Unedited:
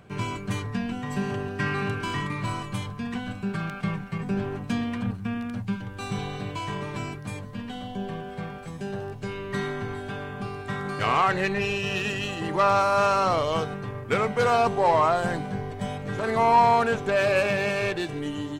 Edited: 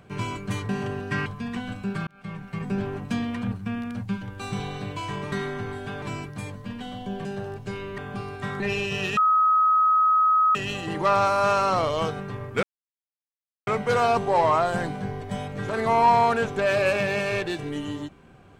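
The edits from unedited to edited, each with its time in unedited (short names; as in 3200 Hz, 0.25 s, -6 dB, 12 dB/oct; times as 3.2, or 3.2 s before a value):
0.69–1.17 cut
1.74–2.85 cut
3.66–4.21 fade in
8.14–8.81 cut
9.54–10.24 move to 6.91
10.86–11.52 cut
12.09 add tone 1270 Hz -16 dBFS 1.38 s
14.17 insert silence 1.04 s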